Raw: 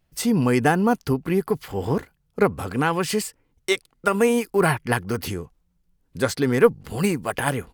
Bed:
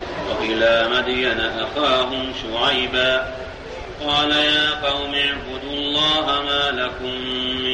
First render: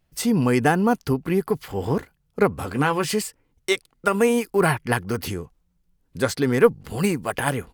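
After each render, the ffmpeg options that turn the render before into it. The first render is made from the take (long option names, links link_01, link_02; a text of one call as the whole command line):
ffmpeg -i in.wav -filter_complex "[0:a]asettb=1/sr,asplit=3[link_01][link_02][link_03];[link_01]atrim=end=2.604[link_04];[link_02]atrim=start=2.6:end=3.12,asetpts=PTS-STARTPTS,afade=type=in:duration=0.004:curve=qsin,afade=type=out:start_time=0.516:duration=0.004:curve=qsin,asplit=2[link_05][link_06];[link_06]adelay=14,volume=-8dB[link_07];[link_05][link_07]amix=inputs=2:normalize=0,atrim=end_sample=22932[link_08];[link_03]atrim=start=3.116[link_09];[link_04][link_08]acrossfade=duration=0.004:curve1=hsin:curve2=qsin[link_10];[link_10][link_09]acrossfade=duration=0.004:curve1=qsin:curve2=hsin" out.wav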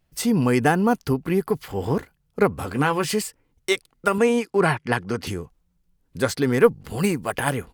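ffmpeg -i in.wav -filter_complex "[0:a]asettb=1/sr,asplit=3[link_01][link_02][link_03];[link_01]atrim=end=4.184[link_04];[link_02]atrim=start=4.18:end=5.27,asetpts=PTS-STARTPTS,afade=type=in:duration=0.004:curve=qsin,afade=type=out:start_time=1.086:duration=0.004:curve=qsin,highpass=110,lowpass=7200[link_05];[link_03]atrim=start=5.266[link_06];[link_04][link_05]acrossfade=duration=0.004:curve1=hsin:curve2=qsin[link_07];[link_07][link_06]acrossfade=duration=0.004:curve1=qsin:curve2=hsin" out.wav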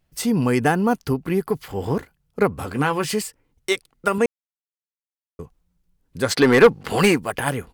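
ffmpeg -i in.wav -filter_complex "[0:a]asplit=3[link_01][link_02][link_03];[link_01]afade=type=out:start_time=6.3:duration=0.02[link_04];[link_02]asplit=2[link_05][link_06];[link_06]highpass=frequency=720:poles=1,volume=21dB,asoftclip=type=tanh:threshold=-2.5dB[link_07];[link_05][link_07]amix=inputs=2:normalize=0,lowpass=frequency=3200:poles=1,volume=-6dB,afade=type=in:start_time=6.3:duration=0.02,afade=type=out:start_time=7.18:duration=0.02[link_08];[link_03]afade=type=in:start_time=7.18:duration=0.02[link_09];[link_04][link_08][link_09]amix=inputs=3:normalize=0,asplit=3[link_10][link_11][link_12];[link_10]atrim=end=4.26,asetpts=PTS-STARTPTS,afade=type=out:start_time=4.256:duration=0.004:curve=hsin[link_13];[link_11]atrim=start=4.26:end=5.39,asetpts=PTS-STARTPTS,volume=0[link_14];[link_12]atrim=start=5.39,asetpts=PTS-STARTPTS,afade=type=in:duration=0.004:curve=hsin[link_15];[link_13][link_14][link_15]concat=n=3:v=0:a=1" out.wav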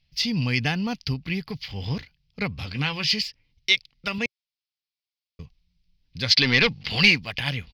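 ffmpeg -i in.wav -af "firequalizer=gain_entry='entry(120,0);entry(380,-17);entry(570,-12);entry(1400,-12);entry(2200,6);entry(5000,11);entry(8000,-25);entry(12000,-16)':delay=0.05:min_phase=1" out.wav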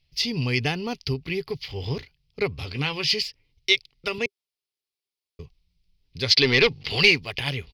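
ffmpeg -i in.wav -af "equalizer=frequency=200:width_type=o:width=0.33:gain=-10,equalizer=frequency=400:width_type=o:width=0.33:gain=12,equalizer=frequency=1600:width_type=o:width=0.33:gain=-5,equalizer=frequency=10000:width_type=o:width=0.33:gain=5" out.wav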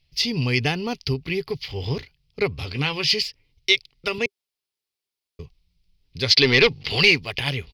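ffmpeg -i in.wav -af "volume=2.5dB,alimiter=limit=-3dB:level=0:latency=1" out.wav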